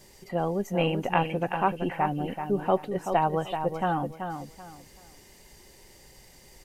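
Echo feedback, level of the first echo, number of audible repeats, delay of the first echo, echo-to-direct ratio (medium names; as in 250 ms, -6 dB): 26%, -7.5 dB, 3, 382 ms, -7.0 dB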